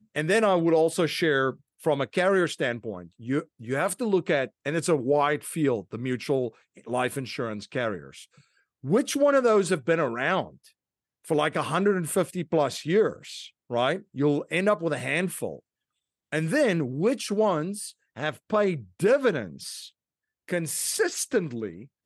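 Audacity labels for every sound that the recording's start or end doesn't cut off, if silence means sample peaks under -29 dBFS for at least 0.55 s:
8.850000	10.440000	sound
11.300000	15.540000	sound
16.330000	19.800000	sound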